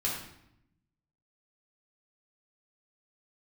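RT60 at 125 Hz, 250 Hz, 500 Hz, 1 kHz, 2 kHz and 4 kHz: 1.3, 1.2, 0.80, 0.75, 0.70, 0.60 seconds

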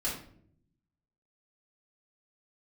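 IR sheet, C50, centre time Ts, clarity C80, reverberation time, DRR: 5.0 dB, 35 ms, 9.0 dB, non-exponential decay, −6.0 dB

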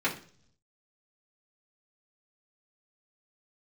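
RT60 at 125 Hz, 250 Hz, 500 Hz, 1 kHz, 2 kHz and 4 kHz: 1.0, 0.75, 0.55, 0.40, 0.45, 0.55 seconds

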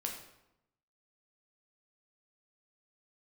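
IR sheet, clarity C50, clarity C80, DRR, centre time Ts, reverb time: 5.5 dB, 8.0 dB, 0.5 dB, 30 ms, 0.85 s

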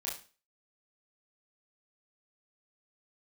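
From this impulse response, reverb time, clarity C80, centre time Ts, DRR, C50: 0.35 s, 12.0 dB, 34 ms, −5.0 dB, 6.0 dB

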